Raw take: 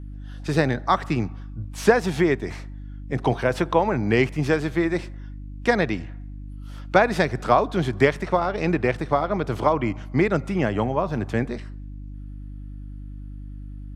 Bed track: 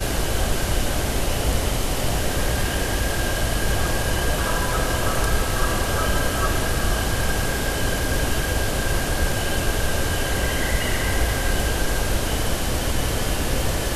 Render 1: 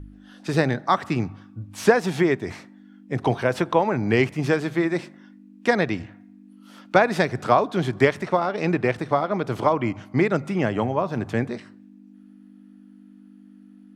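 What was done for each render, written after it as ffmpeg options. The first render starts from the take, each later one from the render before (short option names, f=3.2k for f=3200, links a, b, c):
-af "bandreject=f=50:t=h:w=4,bandreject=f=100:t=h:w=4,bandreject=f=150:t=h:w=4"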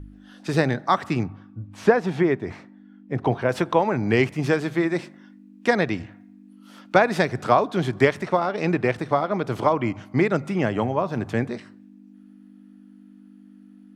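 -filter_complex "[0:a]asettb=1/sr,asplit=3[a][b][c];[a]atrim=end=1.234[d];[b]atrim=start=1.23:end=3.49,asetpts=PTS-STARTPTS,afade=t=in:d=0.004:c=qsin,afade=t=out:st=2.256:d=0.004:c=qsin,lowpass=f=1.9k:p=1[e];[c]atrim=start=3.486[f];[d][e]acrossfade=d=0.004:c1=hsin:c2=qsin[g];[g][f]acrossfade=d=0.004:c1=qsin:c2=hsin"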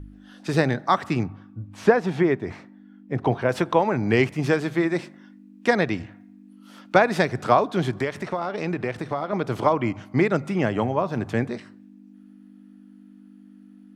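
-filter_complex "[0:a]asettb=1/sr,asplit=3[a][b][c];[a]atrim=end=7.994[d];[b]atrim=start=7.99:end=9.33,asetpts=PTS-STARTPTS,afade=t=in:d=0.004:c=qsin,afade=t=out:st=1.336:d=0.004:c=qsin,acompressor=threshold=-24dB:ratio=2.5:attack=3.2:release=140:knee=1:detection=peak[e];[c]atrim=start=9.326[f];[d][e]acrossfade=d=0.004:c1=hsin:c2=qsin[g];[g][f]acrossfade=d=0.004:c1=qsin:c2=hsin"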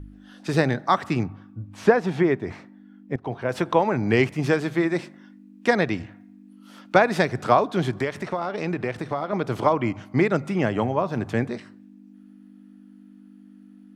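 -filter_complex "[0:a]asplit=2[a][b];[a]atrim=end=3.16,asetpts=PTS-STARTPTS,afade=t=out:st=3.156:d=0.004:c=hsin:silence=0.177828[c];[b]atrim=start=3.16,asetpts=PTS-STARTPTS,afade=t=in:d=0.55:silence=0.177828[d];[c][d]concat=n=2:v=0:a=1"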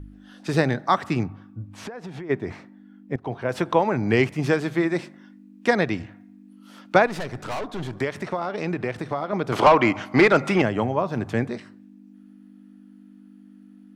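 -filter_complex "[0:a]asplit=3[a][b][c];[a]afade=t=out:st=1.69:d=0.02[d];[b]acompressor=threshold=-32dB:ratio=12:attack=3.2:release=140:knee=1:detection=peak,afade=t=in:st=1.69:d=0.02,afade=t=out:st=2.29:d=0.02[e];[c]afade=t=in:st=2.29:d=0.02[f];[d][e][f]amix=inputs=3:normalize=0,asettb=1/sr,asplit=3[g][h][i];[g]atrim=end=7.064[j];[h]atrim=start=7.06:end=8,asetpts=PTS-STARTPTS,afade=t=in:d=0.004:c=qsin,afade=t=out:st=0.936:d=0.004:c=qsin,aeval=exprs='(tanh(22.4*val(0)+0.55)-tanh(0.55))/22.4':c=same[k];[i]atrim=start=7.996[l];[j][k]acrossfade=d=0.004:c1=hsin:c2=qsin[m];[m][l]acrossfade=d=0.004:c1=qsin:c2=hsin,asettb=1/sr,asplit=3[n][o][p];[n]atrim=end=9.524[q];[o]atrim=start=9.52:end=10.62,asetpts=PTS-STARTPTS,afade=t=in:d=0.004:c=qsin,afade=t=out:st=1.096:d=0.004:c=qsin,asplit=2[r][s];[s]highpass=f=720:p=1,volume=19dB,asoftclip=type=tanh:threshold=-4.5dB[t];[r][t]amix=inputs=2:normalize=0,lowpass=f=4.2k:p=1,volume=-6dB[u];[p]atrim=start=10.616[v];[q][u]acrossfade=d=0.004:c1=hsin:c2=qsin[w];[w][v]acrossfade=d=0.004:c1=qsin:c2=hsin"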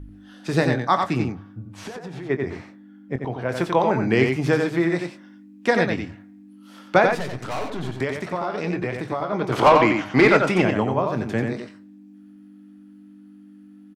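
-filter_complex "[0:a]asplit=2[a][b];[b]adelay=23,volume=-11.5dB[c];[a][c]amix=inputs=2:normalize=0,aecho=1:1:90:0.562"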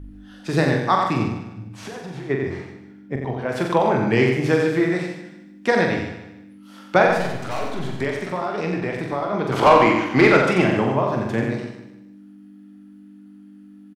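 -filter_complex "[0:a]asplit=2[a][b];[b]adelay=44,volume=-5.5dB[c];[a][c]amix=inputs=2:normalize=0,asplit=2[d][e];[e]aecho=0:1:151|302|453|604:0.282|0.0986|0.0345|0.0121[f];[d][f]amix=inputs=2:normalize=0"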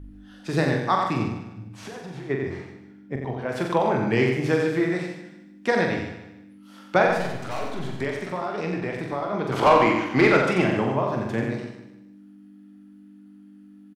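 -af "volume=-3.5dB"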